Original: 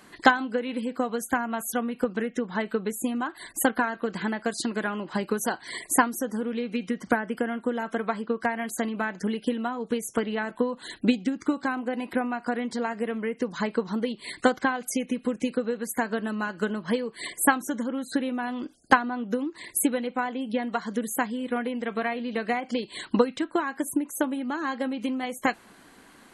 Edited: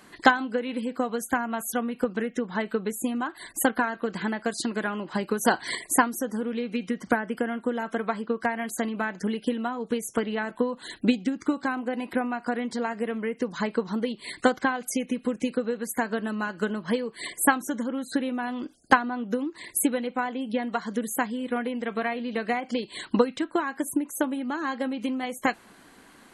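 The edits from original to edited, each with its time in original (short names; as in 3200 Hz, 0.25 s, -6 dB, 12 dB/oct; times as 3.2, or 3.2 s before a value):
5.45–5.75 gain +6.5 dB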